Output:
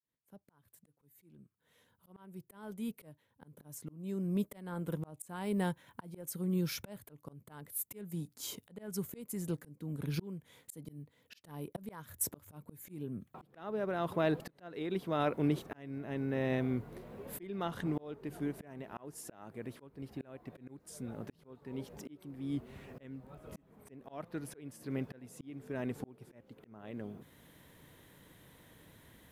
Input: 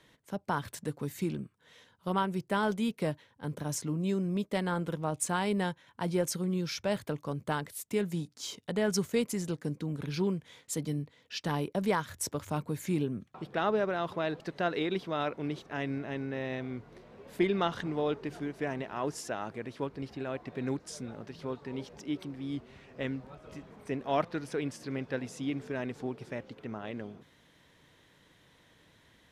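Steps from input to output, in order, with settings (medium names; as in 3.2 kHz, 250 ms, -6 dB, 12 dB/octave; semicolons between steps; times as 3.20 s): fade-in on the opening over 5.33 s; slow attack 799 ms; FFT filter 200 Hz 0 dB, 5.7 kHz -8 dB, 13 kHz +11 dB; trim +5.5 dB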